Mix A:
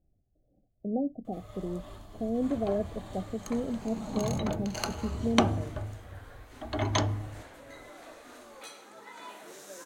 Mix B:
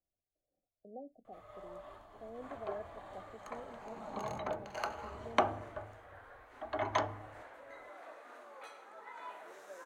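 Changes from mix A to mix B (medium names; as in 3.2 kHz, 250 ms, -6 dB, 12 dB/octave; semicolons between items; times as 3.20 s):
speech -10.0 dB; master: add three-band isolator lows -17 dB, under 460 Hz, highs -16 dB, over 2.2 kHz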